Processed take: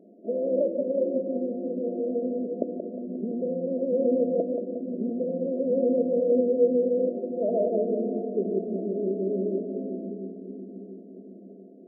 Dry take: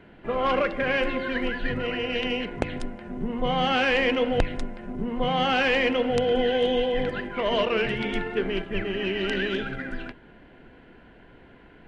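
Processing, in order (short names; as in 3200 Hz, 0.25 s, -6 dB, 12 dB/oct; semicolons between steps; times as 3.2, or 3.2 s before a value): split-band echo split 360 Hz, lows 0.691 s, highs 0.178 s, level -5.5 dB; FFT band-pass 180–710 Hz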